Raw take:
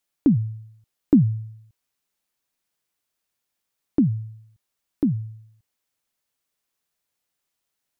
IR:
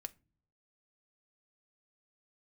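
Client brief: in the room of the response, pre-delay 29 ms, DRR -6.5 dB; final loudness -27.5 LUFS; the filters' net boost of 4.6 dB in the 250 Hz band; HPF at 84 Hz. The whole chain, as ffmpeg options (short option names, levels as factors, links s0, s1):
-filter_complex "[0:a]highpass=84,equalizer=f=250:t=o:g=5.5,asplit=2[s0][s1];[1:a]atrim=start_sample=2205,adelay=29[s2];[s1][s2]afir=irnorm=-1:irlink=0,volume=3.35[s3];[s0][s3]amix=inputs=2:normalize=0,volume=0.158"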